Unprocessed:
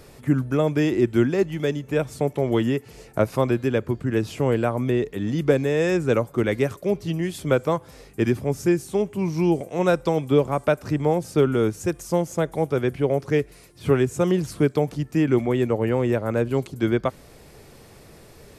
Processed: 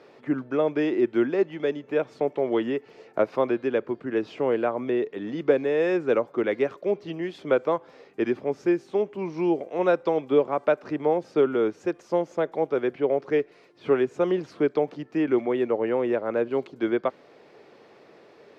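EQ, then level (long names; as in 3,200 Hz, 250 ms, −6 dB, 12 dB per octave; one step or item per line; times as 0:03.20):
Chebyshev high-pass filter 370 Hz, order 2
high-frequency loss of the air 230 metres
0.0 dB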